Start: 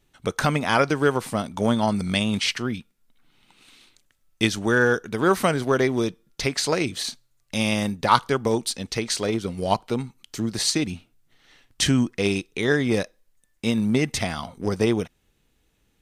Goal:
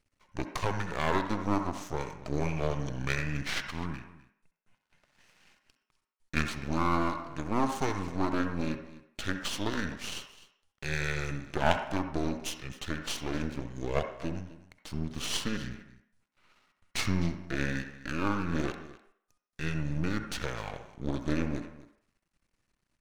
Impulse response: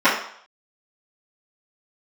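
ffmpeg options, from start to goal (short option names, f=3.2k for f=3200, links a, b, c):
-filter_complex "[0:a]aecho=1:1:177:0.133,asetrate=30694,aresample=44100,aeval=exprs='max(val(0),0)':c=same,asplit=2[a][b];[1:a]atrim=start_sample=2205,adelay=60[c];[b][c]afir=irnorm=-1:irlink=0,volume=-31dB[d];[a][d]amix=inputs=2:normalize=0,volume=-6dB"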